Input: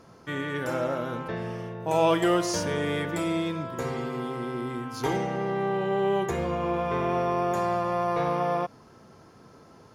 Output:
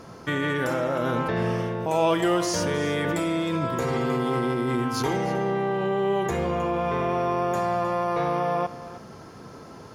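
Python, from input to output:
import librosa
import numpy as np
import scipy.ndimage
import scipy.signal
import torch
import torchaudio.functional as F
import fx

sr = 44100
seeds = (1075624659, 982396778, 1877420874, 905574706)

p1 = fx.over_compress(x, sr, threshold_db=-33.0, ratio=-0.5)
p2 = x + (p1 * librosa.db_to_amplitude(-1.0))
y = p2 + 10.0 ** (-15.5 / 20.0) * np.pad(p2, (int(313 * sr / 1000.0), 0))[:len(p2)]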